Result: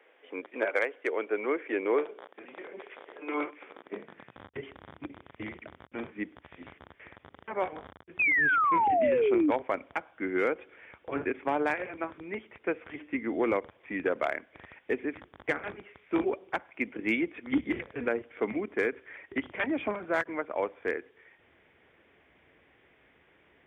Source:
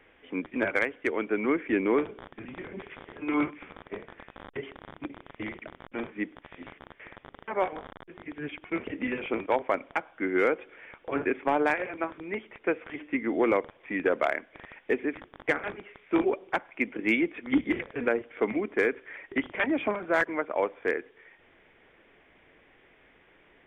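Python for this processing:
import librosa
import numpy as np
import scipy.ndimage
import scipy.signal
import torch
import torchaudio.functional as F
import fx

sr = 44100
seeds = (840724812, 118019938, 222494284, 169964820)

y = fx.spec_paint(x, sr, seeds[0], shape='fall', start_s=8.19, length_s=1.32, low_hz=280.0, high_hz=2600.0, level_db=-21.0)
y = fx.filter_sweep_highpass(y, sr, from_hz=480.0, to_hz=71.0, start_s=3.62, end_s=4.55, q=1.7)
y = fx.end_taper(y, sr, db_per_s=590.0)
y = F.gain(torch.from_numpy(y), -3.5).numpy()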